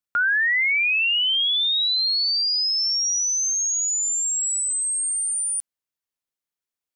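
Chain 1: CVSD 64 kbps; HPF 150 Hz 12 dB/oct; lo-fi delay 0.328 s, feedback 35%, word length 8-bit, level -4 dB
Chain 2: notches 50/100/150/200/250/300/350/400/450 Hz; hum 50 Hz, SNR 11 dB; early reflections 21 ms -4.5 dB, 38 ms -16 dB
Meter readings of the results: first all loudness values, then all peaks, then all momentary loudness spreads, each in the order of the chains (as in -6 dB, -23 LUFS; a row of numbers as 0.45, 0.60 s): -18.0, -18.0 LUFS; -11.5, -11.0 dBFS; 6, 17 LU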